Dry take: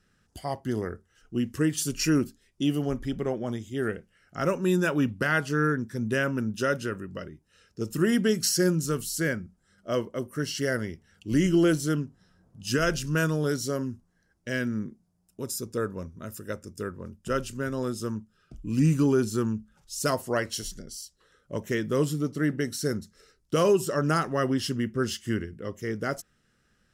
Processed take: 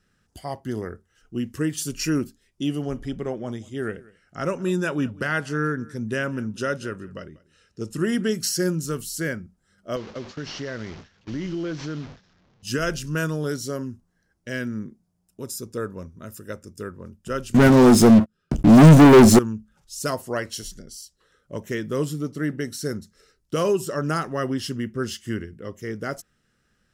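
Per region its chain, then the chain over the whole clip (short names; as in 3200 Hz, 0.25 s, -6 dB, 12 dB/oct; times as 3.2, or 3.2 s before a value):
2.69–8.32 LPF 11000 Hz 24 dB/oct + echo 0.19 s -22.5 dB
9.96–12.63 delta modulation 32 kbps, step -34.5 dBFS + gate with hold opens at -28 dBFS, closes at -31 dBFS + compressor 3:1, threshold -28 dBFS
17.54–19.39 bell 230 Hz +7.5 dB 2.3 oct + sample leveller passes 5 + doubler 13 ms -13 dB
whole clip: dry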